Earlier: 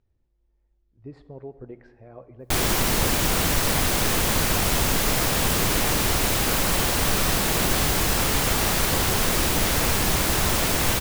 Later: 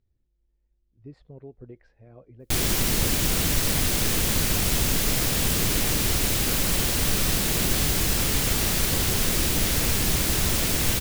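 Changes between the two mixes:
speech: send off
master: add parametric band 930 Hz −8.5 dB 2 octaves

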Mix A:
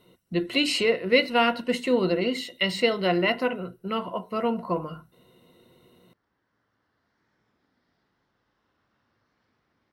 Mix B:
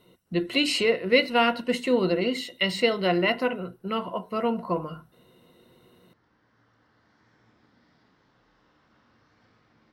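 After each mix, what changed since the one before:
background +4.5 dB
reverb: on, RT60 1.0 s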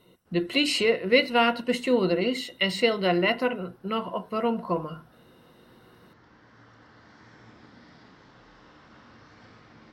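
background +11.0 dB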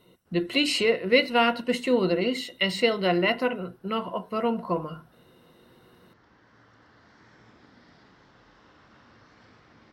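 background: send −10.0 dB

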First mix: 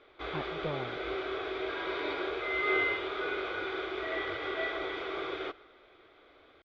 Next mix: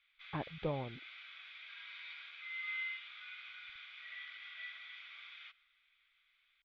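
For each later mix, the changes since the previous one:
background: add four-pole ladder high-pass 2,000 Hz, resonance 40%
master: add high-shelf EQ 2,600 Hz −7 dB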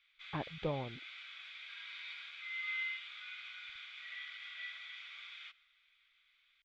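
master: remove high-frequency loss of the air 150 metres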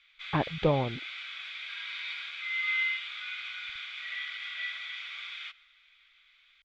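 speech +11.5 dB
background +9.5 dB

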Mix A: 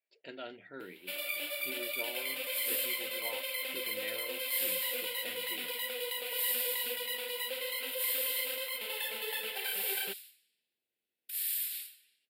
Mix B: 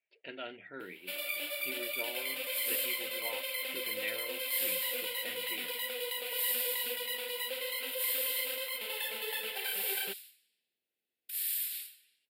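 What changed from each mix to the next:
speech: add low-pass with resonance 2,700 Hz, resonance Q 1.9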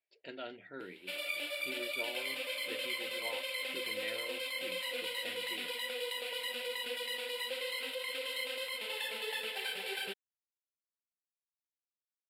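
speech: remove low-pass with resonance 2,700 Hz, resonance Q 1.9
second sound: muted
master: add low-pass filter 7,900 Hz 12 dB per octave

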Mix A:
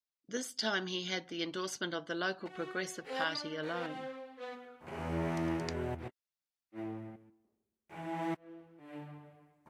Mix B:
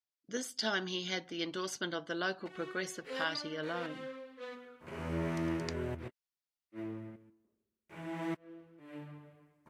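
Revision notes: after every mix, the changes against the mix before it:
background: add parametric band 780 Hz −14.5 dB 0.2 octaves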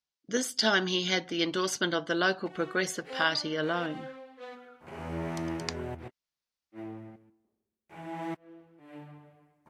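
speech +8.5 dB
background: add parametric band 780 Hz +14.5 dB 0.2 octaves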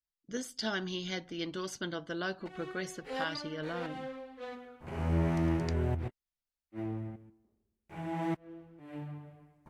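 speech −10.5 dB
master: remove high-pass filter 320 Hz 6 dB per octave

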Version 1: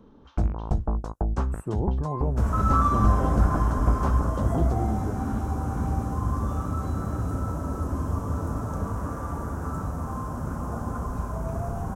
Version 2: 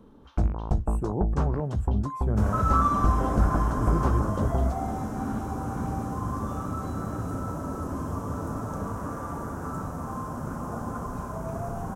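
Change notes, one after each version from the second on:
speech: entry −0.65 s
second sound: add parametric band 61 Hz −10.5 dB 1.2 octaves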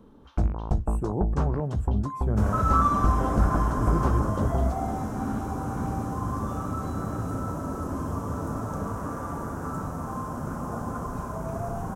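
reverb: on, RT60 1.8 s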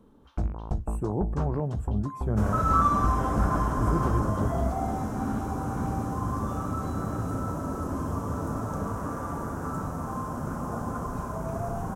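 first sound −4.5 dB

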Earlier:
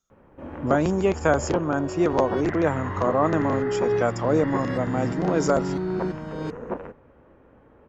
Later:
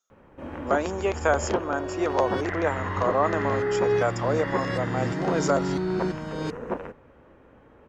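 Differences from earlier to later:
speech: add high-pass filter 460 Hz 12 dB per octave
background: add high-shelf EQ 2,400 Hz +9 dB

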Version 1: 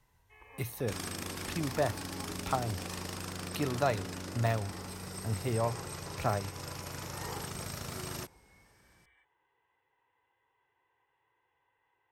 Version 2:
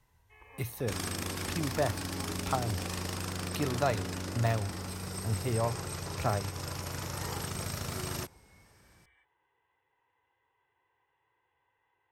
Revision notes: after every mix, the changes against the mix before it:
second sound +3.0 dB
master: add parametric band 79 Hz +4 dB 0.85 octaves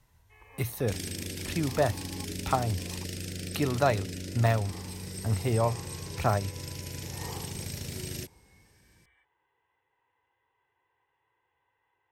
speech +4.5 dB
second sound: add Butterworth band-reject 1,000 Hz, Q 0.68

